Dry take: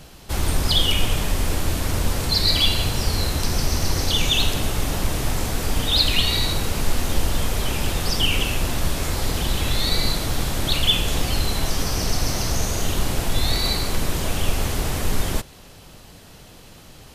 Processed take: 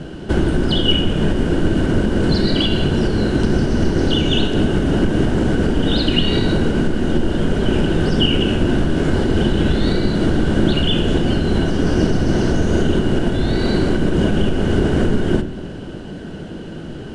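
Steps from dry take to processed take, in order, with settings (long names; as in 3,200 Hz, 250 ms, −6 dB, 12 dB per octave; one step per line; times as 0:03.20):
Butterworth low-pass 10,000 Hz 48 dB per octave
high-shelf EQ 2,900 Hz −11.5 dB
downward compressor 3 to 1, threshold −26 dBFS, peak gain reduction 10.5 dB
hollow resonant body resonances 210/340/1,500/2,900 Hz, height 15 dB, ringing for 20 ms
on a send: convolution reverb RT60 1.1 s, pre-delay 3 ms, DRR 9.5 dB
on the sum: level +4.5 dB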